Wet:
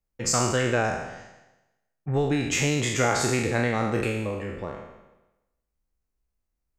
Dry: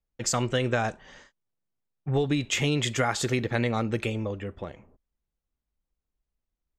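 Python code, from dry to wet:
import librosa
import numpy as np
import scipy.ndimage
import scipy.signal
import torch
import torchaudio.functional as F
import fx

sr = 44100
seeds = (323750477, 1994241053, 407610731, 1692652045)

p1 = fx.spec_trails(x, sr, decay_s=0.97)
p2 = fx.peak_eq(p1, sr, hz=3400.0, db=-8.5, octaves=0.42)
y = p2 + fx.echo_feedback(p2, sr, ms=166, feedback_pct=36, wet_db=-20, dry=0)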